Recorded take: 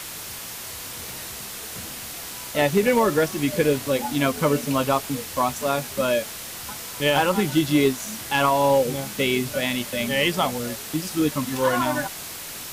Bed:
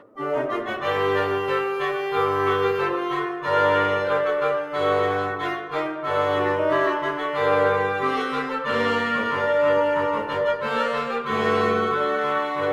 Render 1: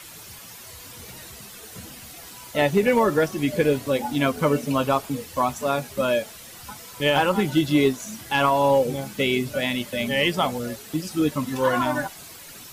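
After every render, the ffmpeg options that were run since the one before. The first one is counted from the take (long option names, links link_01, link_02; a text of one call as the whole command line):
ffmpeg -i in.wav -af "afftdn=noise_reduction=10:noise_floor=-36" out.wav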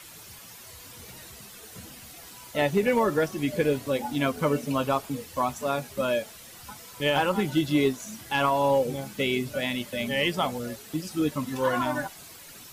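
ffmpeg -i in.wav -af "volume=-4dB" out.wav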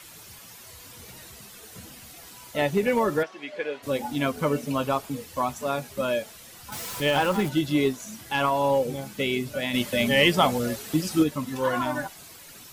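ffmpeg -i in.wav -filter_complex "[0:a]asplit=3[link_01][link_02][link_03];[link_01]afade=type=out:start_time=3.22:duration=0.02[link_04];[link_02]highpass=630,lowpass=3200,afade=type=in:start_time=3.22:duration=0.02,afade=type=out:start_time=3.82:duration=0.02[link_05];[link_03]afade=type=in:start_time=3.82:duration=0.02[link_06];[link_04][link_05][link_06]amix=inputs=3:normalize=0,asettb=1/sr,asplit=3[link_07][link_08][link_09];[link_07]atrim=end=6.724[link_10];[link_08]atrim=start=6.72:end=7.49,asetpts=PTS-STARTPTS,afade=type=in:duration=0.004:curve=qsin,afade=type=out:start_time=0.766:duration=0.004:curve=qsin,aeval=exprs='val(0)+0.5*0.0266*sgn(val(0))':channel_layout=same[link_11];[link_09]atrim=start=7.486[link_12];[link_10][link_11]acrossfade=duration=0.004:curve1=hsin:curve2=qsin[link_13];[link_13][link_12]acrossfade=duration=0.004:curve1=qsin:curve2=hsin,asplit=3[link_14][link_15][link_16];[link_14]afade=type=out:start_time=9.73:duration=0.02[link_17];[link_15]acontrast=70,afade=type=in:start_time=9.73:duration=0.02,afade=type=out:start_time=11.22:duration=0.02[link_18];[link_16]afade=type=in:start_time=11.22:duration=0.02[link_19];[link_17][link_18][link_19]amix=inputs=3:normalize=0" out.wav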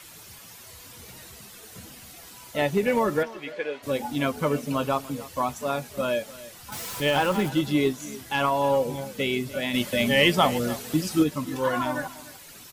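ffmpeg -i in.wav -af "aecho=1:1:296:0.126" out.wav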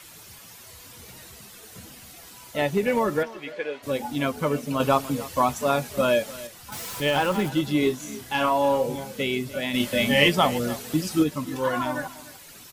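ffmpeg -i in.wav -filter_complex "[0:a]asettb=1/sr,asplit=3[link_01][link_02][link_03];[link_01]atrim=end=7.794[link_04];[link_02]atrim=start=7.79:end=9.23,asetpts=PTS-STARTPTS,afade=type=in:duration=0.004:curve=qsin,afade=type=out:start_time=1.436:duration=0.004:curve=qsin,asplit=2[link_05][link_06];[link_06]adelay=32,volume=-6dB[link_07];[link_05][link_07]amix=inputs=2:normalize=0,atrim=end_sample=63504[link_08];[link_03]atrim=start=9.226[link_09];[link_04][link_08]acrossfade=duration=0.004:curve1=hsin:curve2=qsin[link_10];[link_10][link_09]acrossfade=duration=0.004:curve1=qsin:curve2=hsin,asettb=1/sr,asplit=3[link_11][link_12][link_13];[link_11]atrim=end=9.774[link_14];[link_12]atrim=start=9.77:end=10.29,asetpts=PTS-STARTPTS,afade=type=in:duration=0.004:curve=qsin,afade=type=out:start_time=0.516:duration=0.004:curve=qsin,asplit=2[link_15][link_16];[link_16]adelay=28,volume=-4.5dB[link_17];[link_15][link_17]amix=inputs=2:normalize=0,atrim=end_sample=22932[link_18];[link_13]atrim=start=10.286[link_19];[link_14][link_18]acrossfade=duration=0.004:curve1=hsin:curve2=qsin[link_20];[link_20][link_19]acrossfade=duration=0.004:curve1=qsin:curve2=hsin,asplit=3[link_21][link_22][link_23];[link_21]atrim=end=4.802[link_24];[link_22]atrim=start=4.798:end=6.472,asetpts=PTS-STARTPTS,volume=5dB[link_25];[link_23]atrim=start=6.468[link_26];[link_24][link_25]acrossfade=duration=0.004:curve1=hsin:curve2=hsin[link_27];[link_27][link_26]acrossfade=duration=0.004:curve1=hsin:curve2=hsin" out.wav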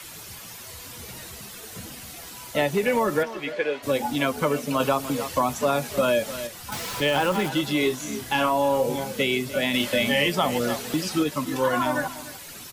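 ffmpeg -i in.wav -filter_complex "[0:a]asplit=2[link_01][link_02];[link_02]alimiter=limit=-16dB:level=0:latency=1,volume=-1dB[link_03];[link_01][link_03]amix=inputs=2:normalize=0,acrossover=split=170|430|5700[link_04][link_05][link_06][link_07];[link_04]acompressor=threshold=-39dB:ratio=4[link_08];[link_05]acompressor=threshold=-29dB:ratio=4[link_09];[link_06]acompressor=threshold=-21dB:ratio=4[link_10];[link_07]acompressor=threshold=-38dB:ratio=4[link_11];[link_08][link_09][link_10][link_11]amix=inputs=4:normalize=0" out.wav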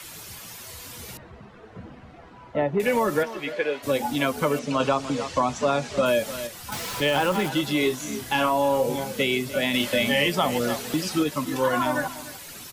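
ffmpeg -i in.wav -filter_complex "[0:a]asettb=1/sr,asplit=3[link_01][link_02][link_03];[link_01]atrim=end=1.174[link_04];[link_02]atrim=start=1.17:end=2.8,asetpts=PTS-STARTPTS,afade=type=in:duration=0.004:curve=qsin,afade=type=out:start_time=1.626:duration=0.004:curve=qsin,lowpass=1300[link_05];[link_03]atrim=start=2.796[link_06];[link_04][link_05]acrossfade=duration=0.004:curve1=hsin:curve2=qsin[link_07];[link_07][link_06]acrossfade=duration=0.004:curve1=qsin:curve2=hsin,asettb=1/sr,asplit=3[link_08][link_09][link_10];[link_08]atrim=end=4.594[link_11];[link_09]atrim=start=4.59:end=6.06,asetpts=PTS-STARTPTS,afade=type=in:duration=0.004:curve=qsin,afade=type=out:start_time=1.466:duration=0.004:curve=qsin,lowpass=frequency=7300:width=0.5412,lowpass=frequency=7300:width=1.3066[link_12];[link_10]atrim=start=6.056[link_13];[link_11][link_12]acrossfade=duration=0.004:curve1=hsin:curve2=qsin[link_14];[link_14][link_13]acrossfade=duration=0.004:curve1=qsin:curve2=hsin" out.wav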